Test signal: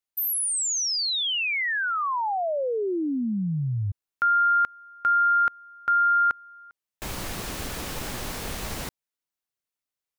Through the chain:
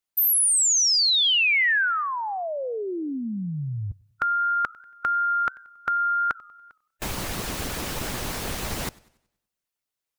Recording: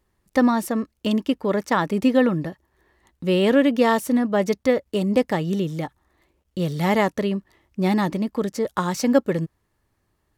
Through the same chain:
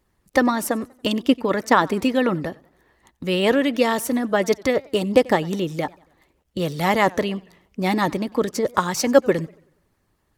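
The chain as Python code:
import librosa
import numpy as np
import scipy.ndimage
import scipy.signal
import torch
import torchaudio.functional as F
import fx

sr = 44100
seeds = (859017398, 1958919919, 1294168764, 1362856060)

y = fx.hpss(x, sr, part='harmonic', gain_db=-9)
y = fx.echo_warbled(y, sr, ms=94, feedback_pct=44, rate_hz=2.8, cents=168, wet_db=-24.0)
y = y * librosa.db_to_amplitude(6.0)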